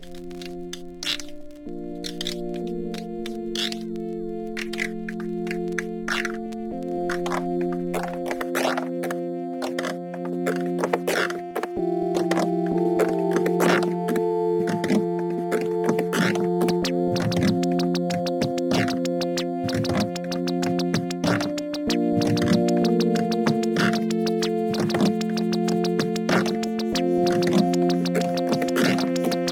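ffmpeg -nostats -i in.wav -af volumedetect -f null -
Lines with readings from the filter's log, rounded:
mean_volume: -23.8 dB
max_volume: -5.6 dB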